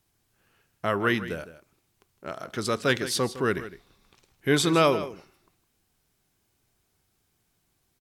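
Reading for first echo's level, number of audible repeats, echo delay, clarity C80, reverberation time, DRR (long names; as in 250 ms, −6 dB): −14.0 dB, 1, 159 ms, no reverb audible, no reverb audible, no reverb audible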